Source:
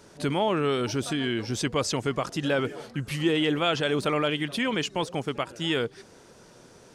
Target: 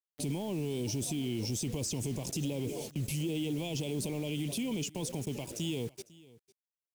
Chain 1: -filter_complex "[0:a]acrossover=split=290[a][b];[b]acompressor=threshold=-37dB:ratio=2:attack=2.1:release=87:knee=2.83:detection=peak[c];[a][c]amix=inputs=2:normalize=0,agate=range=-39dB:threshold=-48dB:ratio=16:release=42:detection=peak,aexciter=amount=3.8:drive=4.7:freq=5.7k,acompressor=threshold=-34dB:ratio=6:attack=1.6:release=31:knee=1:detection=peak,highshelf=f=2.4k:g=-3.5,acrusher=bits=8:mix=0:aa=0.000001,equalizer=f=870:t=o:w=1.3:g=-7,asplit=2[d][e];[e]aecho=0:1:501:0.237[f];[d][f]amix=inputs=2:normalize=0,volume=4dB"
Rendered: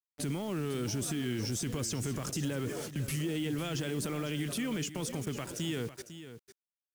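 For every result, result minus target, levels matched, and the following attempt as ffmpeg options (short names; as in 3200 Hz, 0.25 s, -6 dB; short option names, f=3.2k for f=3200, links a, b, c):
echo-to-direct +9.5 dB; 2000 Hz band +5.0 dB
-filter_complex "[0:a]acrossover=split=290[a][b];[b]acompressor=threshold=-37dB:ratio=2:attack=2.1:release=87:knee=2.83:detection=peak[c];[a][c]amix=inputs=2:normalize=0,agate=range=-39dB:threshold=-48dB:ratio=16:release=42:detection=peak,aexciter=amount=3.8:drive=4.7:freq=5.7k,acompressor=threshold=-34dB:ratio=6:attack=1.6:release=31:knee=1:detection=peak,highshelf=f=2.4k:g=-3.5,acrusher=bits=8:mix=0:aa=0.000001,equalizer=f=870:t=o:w=1.3:g=-7,asplit=2[d][e];[e]aecho=0:1:501:0.0794[f];[d][f]amix=inputs=2:normalize=0,volume=4dB"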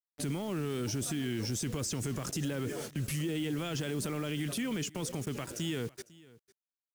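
2000 Hz band +5.0 dB
-filter_complex "[0:a]acrossover=split=290[a][b];[b]acompressor=threshold=-37dB:ratio=2:attack=2.1:release=87:knee=2.83:detection=peak[c];[a][c]amix=inputs=2:normalize=0,agate=range=-39dB:threshold=-48dB:ratio=16:release=42:detection=peak,aexciter=amount=3.8:drive=4.7:freq=5.7k,acompressor=threshold=-34dB:ratio=6:attack=1.6:release=31:knee=1:detection=peak,asuperstop=centerf=1500:order=8:qfactor=1.2,highshelf=f=2.4k:g=-3.5,acrusher=bits=8:mix=0:aa=0.000001,equalizer=f=870:t=o:w=1.3:g=-7,asplit=2[d][e];[e]aecho=0:1:501:0.0794[f];[d][f]amix=inputs=2:normalize=0,volume=4dB"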